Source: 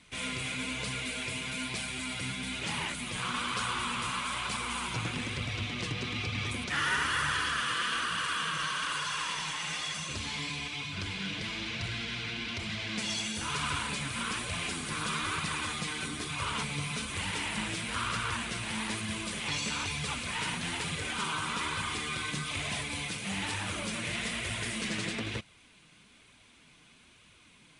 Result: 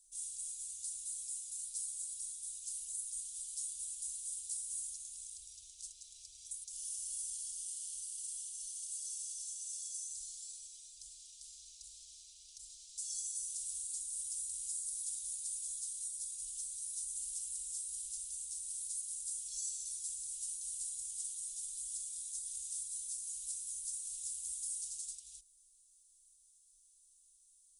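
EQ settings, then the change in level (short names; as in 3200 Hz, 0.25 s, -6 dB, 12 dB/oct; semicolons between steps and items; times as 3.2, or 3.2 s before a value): inverse Chebyshev band-stop 130–1900 Hz, stop band 70 dB; low shelf 77 Hz -11 dB; +5.0 dB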